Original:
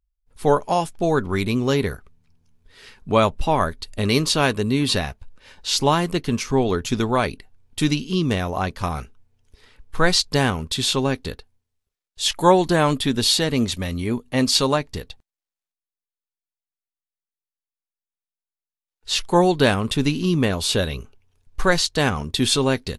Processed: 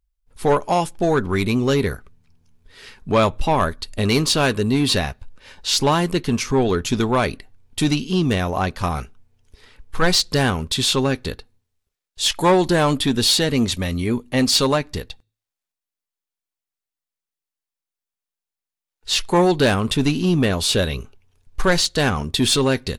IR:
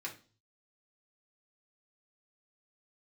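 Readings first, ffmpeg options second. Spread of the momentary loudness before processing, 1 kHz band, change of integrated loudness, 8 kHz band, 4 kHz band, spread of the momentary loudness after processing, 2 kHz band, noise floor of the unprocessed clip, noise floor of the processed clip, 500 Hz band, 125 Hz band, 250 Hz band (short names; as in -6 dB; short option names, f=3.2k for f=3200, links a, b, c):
9 LU, +0.5 dB, +1.5 dB, +2.0 dB, +2.0 dB, 9 LU, +1.0 dB, under -85 dBFS, under -85 dBFS, +1.0 dB, +1.5 dB, +1.5 dB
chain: -filter_complex "[0:a]asplit=2[a][b];[1:a]atrim=start_sample=2205[c];[b][c]afir=irnorm=-1:irlink=0,volume=-22dB[d];[a][d]amix=inputs=2:normalize=0,asoftclip=type=tanh:threshold=-12dB,volume=3dB"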